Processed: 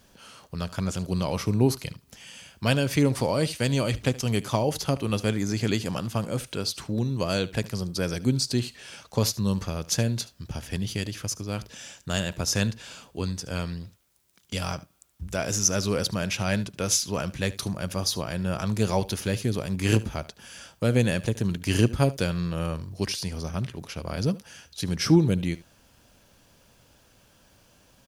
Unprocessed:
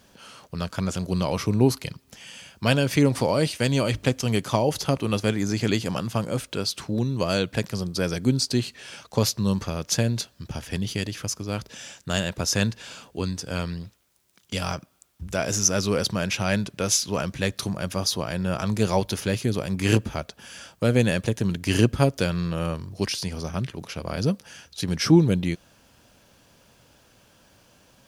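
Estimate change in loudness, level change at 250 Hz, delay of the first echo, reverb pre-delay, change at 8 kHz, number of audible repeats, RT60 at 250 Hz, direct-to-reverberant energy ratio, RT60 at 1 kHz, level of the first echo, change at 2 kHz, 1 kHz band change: -2.0 dB, -2.5 dB, 74 ms, no reverb, -1.5 dB, 1, no reverb, no reverb, no reverb, -19.0 dB, -2.5 dB, -3.0 dB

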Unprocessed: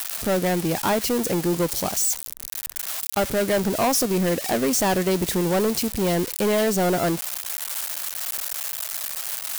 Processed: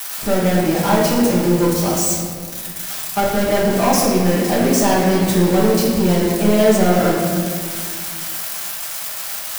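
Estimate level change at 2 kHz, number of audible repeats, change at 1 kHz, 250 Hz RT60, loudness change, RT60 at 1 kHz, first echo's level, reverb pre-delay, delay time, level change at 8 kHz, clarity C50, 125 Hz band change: +5.0 dB, no echo, +6.5 dB, 2.7 s, +6.0 dB, 1.9 s, no echo, 5 ms, no echo, +3.0 dB, 0.0 dB, +8.5 dB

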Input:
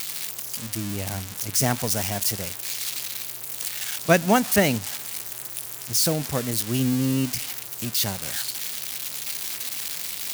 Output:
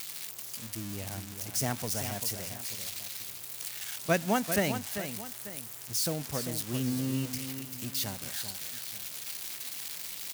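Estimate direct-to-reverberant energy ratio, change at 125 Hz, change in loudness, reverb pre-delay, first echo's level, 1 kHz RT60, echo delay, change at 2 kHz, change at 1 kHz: no reverb, -8.0 dB, -8.5 dB, no reverb, -9.0 dB, no reverb, 393 ms, -8.5 dB, -8.5 dB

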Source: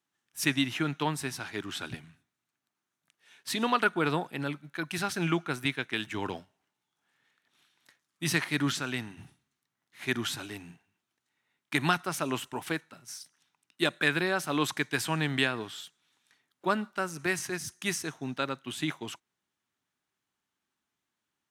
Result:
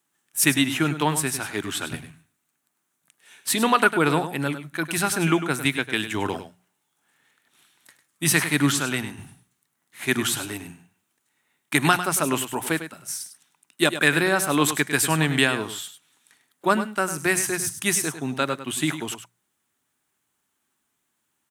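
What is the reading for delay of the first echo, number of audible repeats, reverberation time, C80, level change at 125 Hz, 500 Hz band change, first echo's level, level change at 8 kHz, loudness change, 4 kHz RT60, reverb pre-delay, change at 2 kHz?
101 ms, 1, no reverb, no reverb, +7.5 dB, +8.0 dB, -11.0 dB, +13.5 dB, +8.0 dB, no reverb, no reverb, +7.5 dB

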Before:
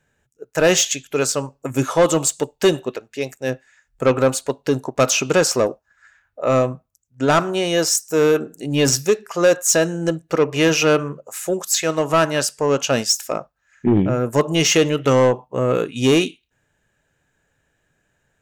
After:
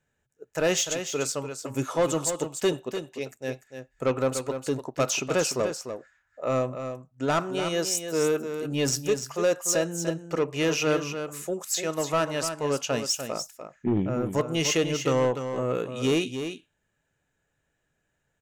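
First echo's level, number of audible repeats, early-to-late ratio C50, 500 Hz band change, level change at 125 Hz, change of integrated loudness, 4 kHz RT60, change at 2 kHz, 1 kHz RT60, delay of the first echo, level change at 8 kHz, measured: -8.5 dB, 1, no reverb, -8.5 dB, -8.5 dB, -8.5 dB, no reverb, -9.0 dB, no reverb, 296 ms, -8.5 dB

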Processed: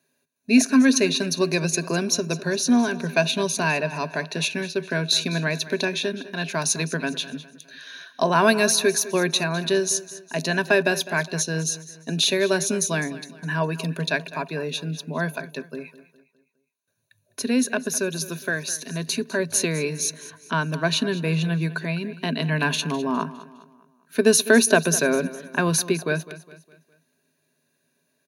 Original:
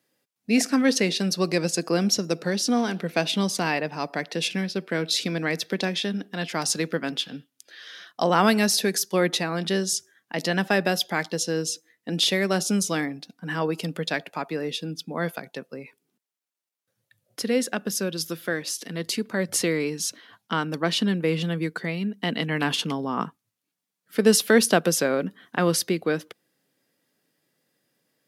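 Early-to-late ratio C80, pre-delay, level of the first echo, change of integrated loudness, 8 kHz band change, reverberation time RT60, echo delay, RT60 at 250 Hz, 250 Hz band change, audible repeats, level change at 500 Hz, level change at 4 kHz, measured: no reverb, no reverb, -16.5 dB, +2.0 dB, +4.0 dB, no reverb, 205 ms, no reverb, +1.5 dB, 3, +2.0 dB, +1.0 dB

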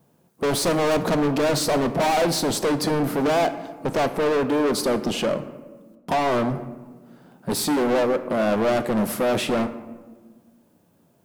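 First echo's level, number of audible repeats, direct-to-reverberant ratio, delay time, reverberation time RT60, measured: no echo, no echo, 10.0 dB, no echo, 1.4 s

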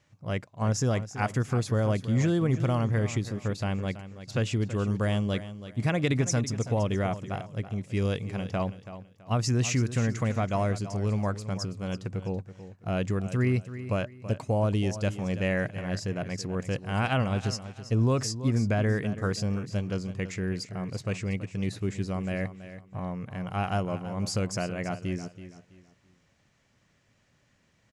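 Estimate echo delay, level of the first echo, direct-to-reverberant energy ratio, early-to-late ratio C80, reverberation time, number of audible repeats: 329 ms, -13.0 dB, no reverb, no reverb, no reverb, 2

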